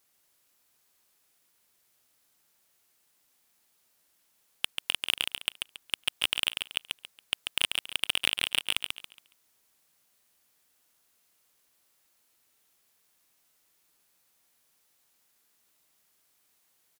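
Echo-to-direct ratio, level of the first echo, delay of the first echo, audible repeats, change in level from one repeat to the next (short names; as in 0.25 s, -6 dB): -4.5 dB, -5.0 dB, 0.139 s, 3, -10.5 dB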